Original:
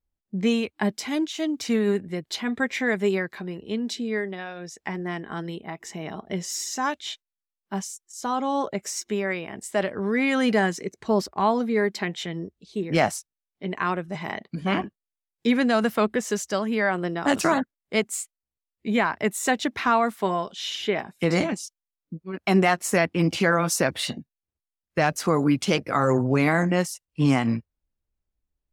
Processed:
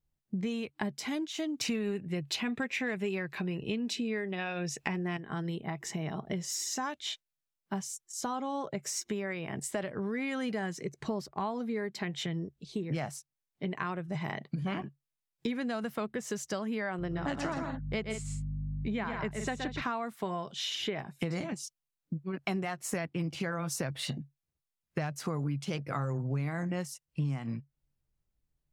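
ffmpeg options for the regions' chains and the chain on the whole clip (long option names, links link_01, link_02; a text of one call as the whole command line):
ffmpeg -i in.wav -filter_complex "[0:a]asettb=1/sr,asplit=3[link_01][link_02][link_03];[link_01]atrim=end=1.614[link_04];[link_02]atrim=start=1.61:end=5.17,asetpts=PTS-STARTPTS,afade=type=in:duration=0.004:curve=qsin,afade=type=out:start_time=3.556:duration=0.004:curve=qsin,equalizer=frequency=2600:width=7.5:gain=13,acontrast=86[link_05];[link_03]atrim=start=5.166[link_06];[link_04][link_05]acrossfade=duration=0.004:curve1=hsin:curve2=qsin[link_07];[link_07][link_06]acrossfade=duration=0.004:curve1=qsin:curve2=hsin,asettb=1/sr,asplit=3[link_08][link_09][link_10];[link_08]atrim=end=16.994[link_11];[link_09]atrim=start=16.99:end=19.82,asetpts=PTS-STARTPTS,afade=type=in:duration=0.004:curve=qsin,afade=type=out:start_time=2.826:duration=0.004:curve=qsin,lowpass=5500,aeval=exprs='val(0)+0.0141*(sin(2*PI*50*n/s)+sin(2*PI*2*50*n/s)/2+sin(2*PI*3*50*n/s)/3+sin(2*PI*4*50*n/s)/4+sin(2*PI*5*50*n/s)/5)':channel_layout=same,aecho=1:1:122|168:0.473|0.266,atrim=end_sample=124803[link_12];[link_10]atrim=start=19.816[link_13];[link_11][link_12]acrossfade=duration=0.004:curve1=hsin:curve2=qsin[link_14];[link_14][link_13]acrossfade=duration=0.004:curve1=qsin:curve2=hsin,equalizer=frequency=140:width_type=o:width=0.37:gain=15,acompressor=threshold=-32dB:ratio=6" out.wav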